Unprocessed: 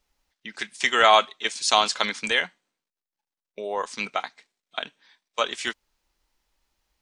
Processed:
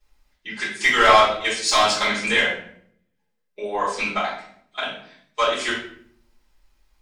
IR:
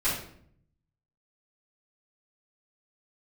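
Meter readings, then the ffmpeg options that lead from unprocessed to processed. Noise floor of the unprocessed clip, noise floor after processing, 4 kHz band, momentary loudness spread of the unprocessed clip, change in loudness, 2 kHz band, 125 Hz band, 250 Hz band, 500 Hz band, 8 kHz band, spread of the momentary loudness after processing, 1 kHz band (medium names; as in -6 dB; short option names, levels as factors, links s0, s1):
under -85 dBFS, -72 dBFS, +2.0 dB, 19 LU, +3.5 dB, +5.5 dB, +9.0 dB, +6.5 dB, +4.5 dB, +3.0 dB, 21 LU, +3.5 dB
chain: -filter_complex "[0:a]asoftclip=type=tanh:threshold=0.251[s0];[1:a]atrim=start_sample=2205[s1];[s0][s1]afir=irnorm=-1:irlink=0,volume=0.631"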